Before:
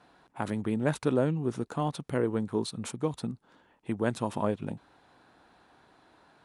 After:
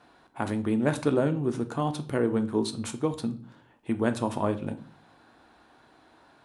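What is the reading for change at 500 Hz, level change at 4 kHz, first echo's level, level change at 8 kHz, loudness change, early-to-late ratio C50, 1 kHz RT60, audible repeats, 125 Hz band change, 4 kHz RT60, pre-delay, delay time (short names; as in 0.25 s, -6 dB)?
+2.5 dB, +3.0 dB, none, +2.5 dB, +3.0 dB, 15.5 dB, 0.40 s, none, +1.5 dB, 0.40 s, 3 ms, none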